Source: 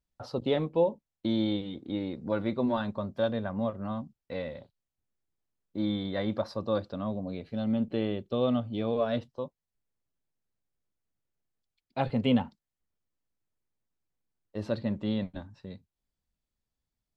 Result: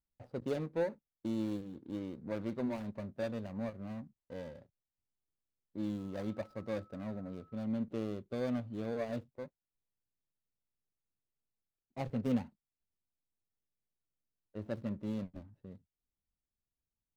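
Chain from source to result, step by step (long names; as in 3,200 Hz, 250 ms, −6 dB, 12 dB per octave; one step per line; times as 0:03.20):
running median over 41 samples
0:05.97–0:07.63: steady tone 1,300 Hz −55 dBFS
one half of a high-frequency compander decoder only
level −7 dB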